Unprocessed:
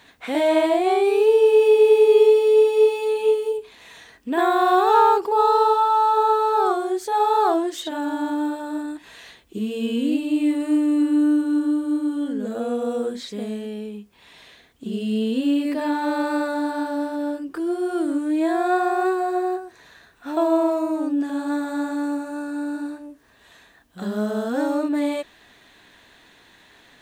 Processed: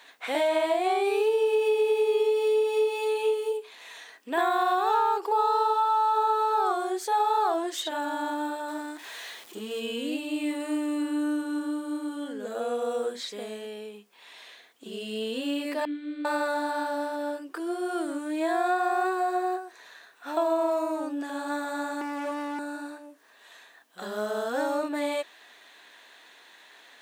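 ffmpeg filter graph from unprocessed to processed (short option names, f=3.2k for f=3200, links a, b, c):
-filter_complex "[0:a]asettb=1/sr,asplit=3[a][b][c];[a]atrim=end=8.684[d];[b]atrim=start=8.68:end=9.8,asetpts=PTS-STARTPTS,afade=t=in:d=0.004:c=qsin,afade=t=out:st=1.116:d=0.004:c=qsin,aeval=exprs='val(0)+0.5*0.00841*sgn(val(0))':c=same,bandreject=f=2.7k:w=20[e];[c]atrim=start=9.796[f];[d][e]acrossfade=d=0.004:c1=hsin:c2=qsin[g];[g][f]acrossfade=d=0.004:c1=qsin:c2=hsin,asettb=1/sr,asplit=3[h][i][j];[h]atrim=end=15.854[k];[i]atrim=start=15.85:end=16.25,asetpts=PTS-STARTPTS,afade=t=in:d=0.004:c=qsin,afade=t=out:st=0.396:d=0.004:c=qsin,asplit=3[l][m][n];[l]bandpass=f=270:t=q:w=8,volume=0dB[o];[m]bandpass=f=2.29k:t=q:w=8,volume=-6dB[p];[n]bandpass=f=3.01k:t=q:w=8,volume=-9dB[q];[o][p][q]amix=inputs=3:normalize=0,lowshelf=f=230:t=q:w=3:g=-8[r];[j]atrim=start=16.246[s];[k][r]acrossfade=d=0.004:c1=hsin:c2=qsin[t];[t][s]acrossfade=d=0.004:c1=qsin:c2=hsin,asettb=1/sr,asplit=3[u][v][w];[u]atrim=end=22.014[x];[v]atrim=start=22.01:end=22.59,asetpts=PTS-STARTPTS,afade=t=in:d=0.004:c=qsin,afade=t=out:st=0.576:d=0.004:c=qsin,equalizer=f=390:t=o:w=2.1:g=13.5,acrossover=split=120|3000[y][z][aa];[z]acompressor=threshold=-16dB:ratio=4:attack=3.2:release=140:knee=2.83:detection=peak[ab];[y][ab][aa]amix=inputs=3:normalize=0,volume=24dB,asoftclip=hard,volume=-24dB[ac];[w]atrim=start=22.586[ad];[x][ac]acrossfade=d=0.004:c1=hsin:c2=qsin[ae];[ae][ad]acrossfade=d=0.004:c1=qsin:c2=hsin,highpass=510,acompressor=threshold=-21dB:ratio=6"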